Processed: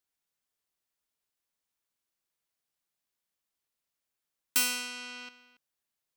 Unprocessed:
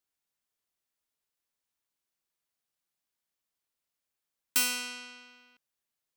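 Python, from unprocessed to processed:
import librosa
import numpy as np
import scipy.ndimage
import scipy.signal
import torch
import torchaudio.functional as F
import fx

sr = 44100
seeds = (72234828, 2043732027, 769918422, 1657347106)

y = fx.env_flatten(x, sr, amount_pct=70, at=(4.89, 5.29))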